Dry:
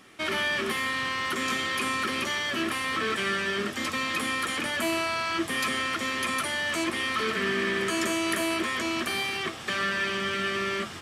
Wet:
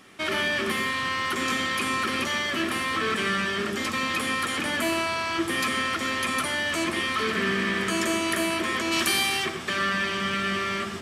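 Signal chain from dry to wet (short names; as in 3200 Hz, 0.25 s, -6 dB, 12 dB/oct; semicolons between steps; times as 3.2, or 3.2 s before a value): 8.91–9.44 high shelf 2400 Hz -> 4500 Hz +11 dB; on a send: reverb RT60 0.40 s, pre-delay 76 ms, DRR 8.5 dB; on the sum: gain +1.5 dB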